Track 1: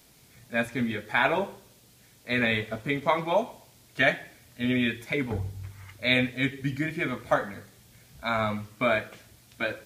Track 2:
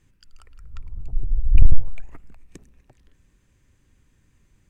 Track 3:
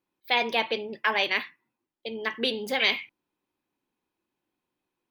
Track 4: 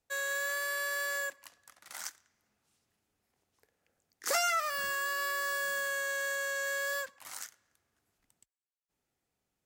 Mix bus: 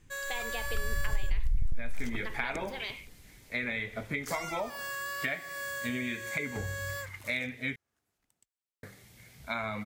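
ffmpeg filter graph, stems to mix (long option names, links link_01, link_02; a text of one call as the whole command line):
ffmpeg -i stem1.wav -i stem2.wav -i stem3.wav -i stem4.wav -filter_complex "[0:a]equalizer=frequency=2100:width=5.5:gain=9.5,adelay=1250,volume=-1.5dB,asplit=3[link_01][link_02][link_03];[link_01]atrim=end=7.76,asetpts=PTS-STARTPTS,afade=type=out:start_time=7.756:duration=0.004:curve=hsin[link_04];[link_02]atrim=start=7.76:end=8.83,asetpts=PTS-STARTPTS,volume=0[link_05];[link_03]atrim=start=8.83,asetpts=PTS-STARTPTS,afade=type=in:duration=0.004:curve=hsin[link_06];[link_04][link_05][link_06]concat=n=3:v=0:a=1[link_07];[1:a]acompressor=threshold=-11dB:ratio=6,asoftclip=type=tanh:threshold=-10.5dB,volume=2dB[link_08];[2:a]acompressor=threshold=-25dB:ratio=6,volume=-8.5dB[link_09];[3:a]volume=-3dB[link_10];[link_07][link_09][link_10]amix=inputs=3:normalize=0,acompressor=threshold=-31dB:ratio=6,volume=0dB[link_11];[link_08][link_11]amix=inputs=2:normalize=0,acompressor=threshold=-23dB:ratio=6" out.wav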